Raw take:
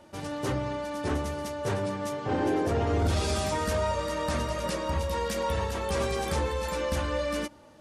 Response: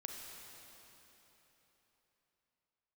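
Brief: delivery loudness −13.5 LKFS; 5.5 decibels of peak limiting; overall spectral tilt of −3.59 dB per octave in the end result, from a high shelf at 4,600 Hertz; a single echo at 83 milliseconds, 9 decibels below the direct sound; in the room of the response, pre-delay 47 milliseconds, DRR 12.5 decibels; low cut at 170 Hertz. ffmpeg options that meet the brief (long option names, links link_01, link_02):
-filter_complex "[0:a]highpass=170,highshelf=frequency=4600:gain=5,alimiter=limit=-22dB:level=0:latency=1,aecho=1:1:83:0.355,asplit=2[link_01][link_02];[1:a]atrim=start_sample=2205,adelay=47[link_03];[link_02][link_03]afir=irnorm=-1:irlink=0,volume=-10.5dB[link_04];[link_01][link_04]amix=inputs=2:normalize=0,volume=17.5dB"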